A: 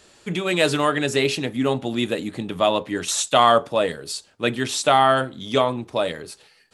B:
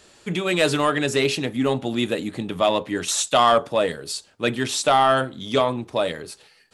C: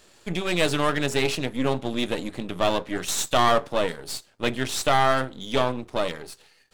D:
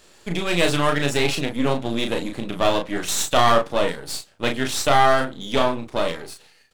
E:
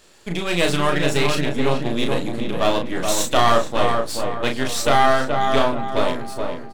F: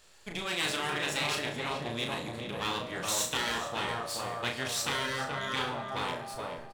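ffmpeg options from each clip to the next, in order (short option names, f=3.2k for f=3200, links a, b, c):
-af "acontrast=51,volume=-5.5dB"
-af "aeval=exprs='if(lt(val(0),0),0.251*val(0),val(0))':c=same"
-filter_complex "[0:a]asplit=2[a][b];[b]adelay=35,volume=-5dB[c];[a][c]amix=inputs=2:normalize=0,volume=2dB"
-filter_complex "[0:a]asplit=2[a][b];[b]adelay=426,lowpass=f=1.7k:p=1,volume=-4dB,asplit=2[c][d];[d]adelay=426,lowpass=f=1.7k:p=1,volume=0.45,asplit=2[e][f];[f]adelay=426,lowpass=f=1.7k:p=1,volume=0.45,asplit=2[g][h];[h]adelay=426,lowpass=f=1.7k:p=1,volume=0.45,asplit=2[i][j];[j]adelay=426,lowpass=f=1.7k:p=1,volume=0.45,asplit=2[k][l];[l]adelay=426,lowpass=f=1.7k:p=1,volume=0.45[m];[a][c][e][g][i][k][m]amix=inputs=7:normalize=0"
-af "equalizer=f=290:t=o:w=1.3:g=-9.5,aecho=1:1:70|140|210|280|350|420:0.224|0.128|0.0727|0.0415|0.0236|0.0135,afftfilt=real='re*lt(hypot(re,im),0.316)':imag='im*lt(hypot(re,im),0.316)':win_size=1024:overlap=0.75,volume=-7dB"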